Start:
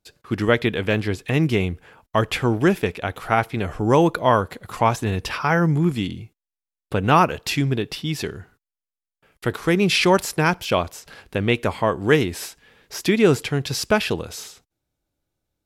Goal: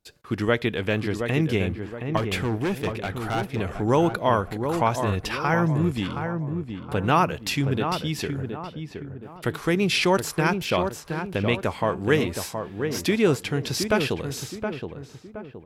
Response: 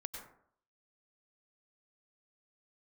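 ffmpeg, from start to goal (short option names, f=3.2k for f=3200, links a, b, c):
-filter_complex "[0:a]asplit=2[a][b];[b]acompressor=threshold=-27dB:ratio=6,volume=-2.5dB[c];[a][c]amix=inputs=2:normalize=0,asettb=1/sr,asplit=3[d][e][f];[d]atrim=end=2.174[g];[e]atrim=start=2.17:end=3.6,asetpts=PTS-STARTPTS,afade=t=in:d=0.004:c=qsin,afade=t=out:st=1.426:d=0.004:c=qsin,asoftclip=type=hard:threshold=-16.5dB[h];[f]atrim=start=3.596[i];[g][h]acrossfade=d=0.004:c1=hsin:c2=qsin[j];[j][i]acrossfade=d=0.004:c1=qsin:c2=hsin,asplit=2[k][l];[l]adelay=720,lowpass=f=1.4k:p=1,volume=-6dB,asplit=2[m][n];[n]adelay=720,lowpass=f=1.4k:p=1,volume=0.42,asplit=2[o][p];[p]adelay=720,lowpass=f=1.4k:p=1,volume=0.42,asplit=2[q][r];[r]adelay=720,lowpass=f=1.4k:p=1,volume=0.42,asplit=2[s][t];[t]adelay=720,lowpass=f=1.4k:p=1,volume=0.42[u];[k][m][o][q][s][u]amix=inputs=6:normalize=0,volume=-5.5dB"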